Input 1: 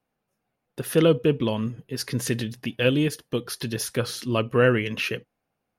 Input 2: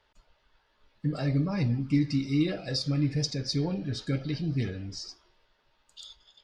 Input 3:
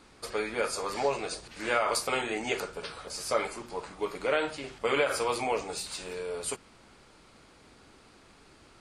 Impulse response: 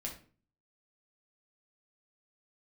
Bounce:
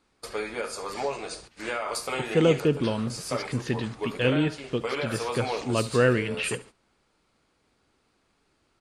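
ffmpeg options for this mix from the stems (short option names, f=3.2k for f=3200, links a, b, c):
-filter_complex "[0:a]lowpass=3.6k,adelay=1400,volume=-2dB,asplit=2[a][b];[b]volume=-19.5dB[c];[2:a]alimiter=limit=-18dB:level=0:latency=1:release=409,volume=0dB,asplit=2[d][e];[e]volume=-15dB[f];[c][f]amix=inputs=2:normalize=0,aecho=0:1:71|142|213|284:1|0.3|0.09|0.027[g];[a][d][g]amix=inputs=3:normalize=0,agate=range=-13dB:threshold=-45dB:ratio=16:detection=peak"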